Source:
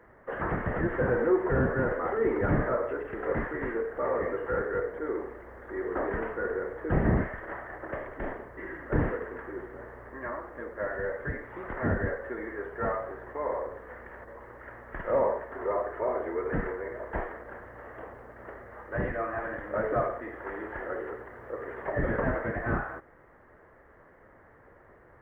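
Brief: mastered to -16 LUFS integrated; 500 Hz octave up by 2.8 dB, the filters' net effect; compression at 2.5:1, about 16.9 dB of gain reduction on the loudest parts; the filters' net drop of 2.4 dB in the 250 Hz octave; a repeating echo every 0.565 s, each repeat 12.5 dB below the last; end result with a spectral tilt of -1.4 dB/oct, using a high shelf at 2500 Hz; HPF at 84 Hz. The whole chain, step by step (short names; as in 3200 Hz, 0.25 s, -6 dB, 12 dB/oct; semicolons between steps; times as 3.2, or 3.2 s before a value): HPF 84 Hz; bell 250 Hz -6 dB; bell 500 Hz +4.5 dB; high shelf 2500 Hz +7.5 dB; compressor 2.5:1, threshold -46 dBFS; feedback echo 0.565 s, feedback 24%, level -12.5 dB; gain +27.5 dB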